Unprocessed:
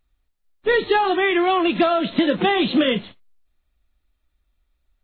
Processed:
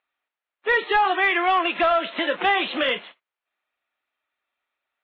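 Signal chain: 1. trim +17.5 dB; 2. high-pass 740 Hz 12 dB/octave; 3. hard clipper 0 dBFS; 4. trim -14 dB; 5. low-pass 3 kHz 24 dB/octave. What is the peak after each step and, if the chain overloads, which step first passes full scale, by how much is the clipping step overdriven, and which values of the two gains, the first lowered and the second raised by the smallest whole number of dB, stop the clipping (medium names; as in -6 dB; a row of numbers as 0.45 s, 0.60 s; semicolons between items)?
+9.5 dBFS, +7.0 dBFS, 0.0 dBFS, -14.0 dBFS, -12.5 dBFS; step 1, 7.0 dB; step 1 +10.5 dB, step 4 -7 dB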